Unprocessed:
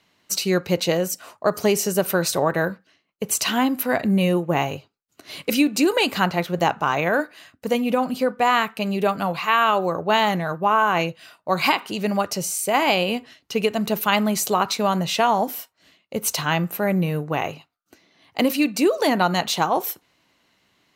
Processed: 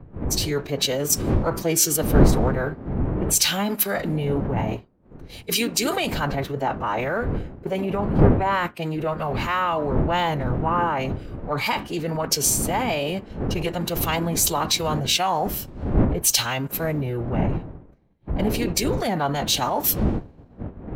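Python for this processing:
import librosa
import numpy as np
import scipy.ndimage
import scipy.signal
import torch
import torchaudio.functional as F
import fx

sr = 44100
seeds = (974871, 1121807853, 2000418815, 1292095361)

p1 = fx.dmg_wind(x, sr, seeds[0], corner_hz=290.0, level_db=-23.0)
p2 = fx.leveller(p1, sr, passes=1)
p3 = fx.pitch_keep_formants(p2, sr, semitones=-4.0)
p4 = fx.over_compress(p3, sr, threshold_db=-23.0, ratio=-1.0)
p5 = p3 + (p4 * 10.0 ** (2.0 / 20.0))
p6 = fx.band_widen(p5, sr, depth_pct=100)
y = p6 * 10.0 ** (-10.5 / 20.0)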